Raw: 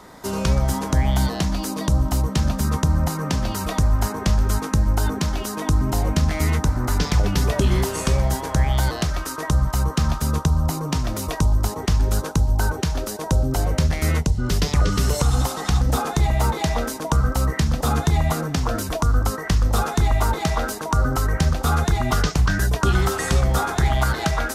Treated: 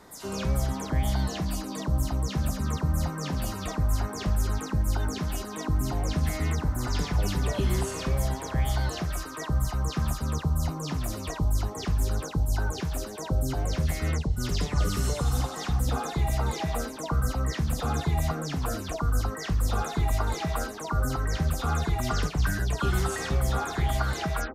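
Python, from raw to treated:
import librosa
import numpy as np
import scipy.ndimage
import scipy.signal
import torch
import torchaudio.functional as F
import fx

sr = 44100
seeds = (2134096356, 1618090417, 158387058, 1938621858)

y = fx.spec_delay(x, sr, highs='early', ms=128)
y = F.gain(torch.from_numpy(y), -7.0).numpy()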